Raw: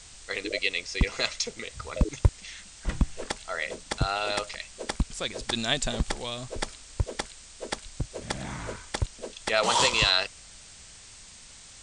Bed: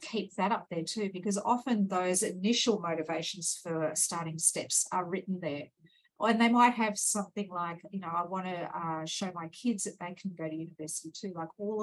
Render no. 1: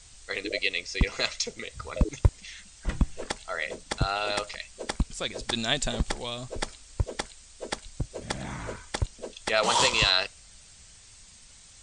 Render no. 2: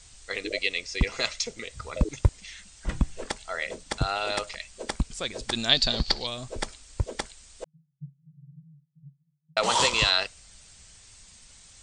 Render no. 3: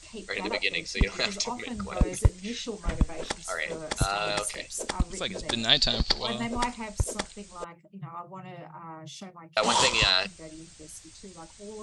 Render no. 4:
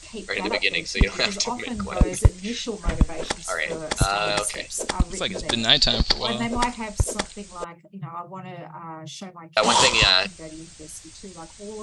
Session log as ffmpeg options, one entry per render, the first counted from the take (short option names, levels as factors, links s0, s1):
-af "afftdn=nr=6:nf=-49"
-filter_complex "[0:a]asettb=1/sr,asplit=3[s0][s1][s2];[s0]atrim=end=5.694[s3];[s1]atrim=start=5.69:end=6.27,asetpts=PTS-STARTPTS,afade=t=in:d=0.004:c=qsin,afade=t=out:st=0.576:d=0.004:c=qsin,lowpass=f=4500:t=q:w=10[s4];[s2]atrim=start=6.266[s5];[s3][s4]acrossfade=d=0.004:c1=hsin:c2=qsin[s6];[s6][s5]acrossfade=d=0.004:c1=qsin:c2=hsin,asettb=1/sr,asplit=3[s7][s8][s9];[s7]atrim=end=7.644[s10];[s8]atrim=start=7.64:end=9.57,asetpts=PTS-STARTPTS,afade=t=in:d=0.004:c=qsin,afade=t=out:st=1.926:d=0.004:c=qsin,asuperpass=centerf=150:order=8:qfactor=5.3[s11];[s9]atrim=start=9.566[s12];[s10][s11]acrossfade=d=0.004:c1=hsin:c2=qsin[s13];[s13][s12]acrossfade=d=0.004:c1=qsin:c2=hsin"
-filter_complex "[1:a]volume=0.422[s0];[0:a][s0]amix=inputs=2:normalize=0"
-af "volume=1.88,alimiter=limit=0.794:level=0:latency=1"